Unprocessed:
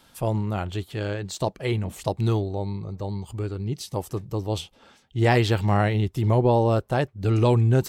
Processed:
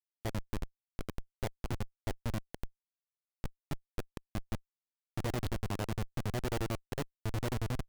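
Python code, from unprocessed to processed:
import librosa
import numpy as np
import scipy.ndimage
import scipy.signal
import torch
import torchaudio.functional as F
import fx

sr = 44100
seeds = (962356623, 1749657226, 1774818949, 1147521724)

y = x * (1.0 - 0.97 / 2.0 + 0.97 / 2.0 * np.cos(2.0 * np.pi * 11.0 * (np.arange(len(x)) / sr)))
y = fx.schmitt(y, sr, flips_db=-23.5)
y = y * librosa.db_to_amplitude(-4.5)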